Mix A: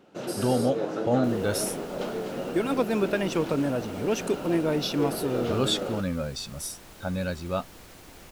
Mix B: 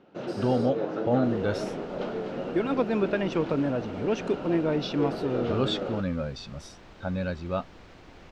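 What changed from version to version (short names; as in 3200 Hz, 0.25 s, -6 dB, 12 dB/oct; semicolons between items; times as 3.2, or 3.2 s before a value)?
master: add air absorption 180 m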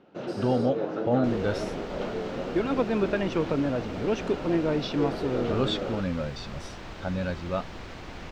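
second sound +10.0 dB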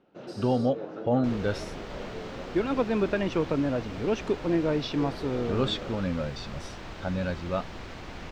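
first sound -7.5 dB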